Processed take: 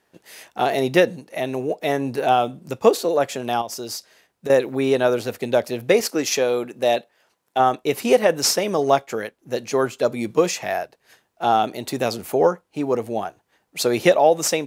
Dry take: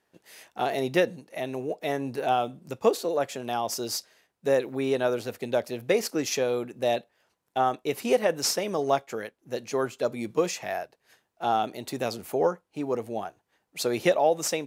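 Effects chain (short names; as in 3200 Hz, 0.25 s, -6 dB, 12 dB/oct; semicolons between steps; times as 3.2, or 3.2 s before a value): 3.61–4.5 compressor 6:1, threshold -35 dBFS, peak gain reduction 12 dB; 6–7.6 low shelf 140 Hz -11.5 dB; gain +7 dB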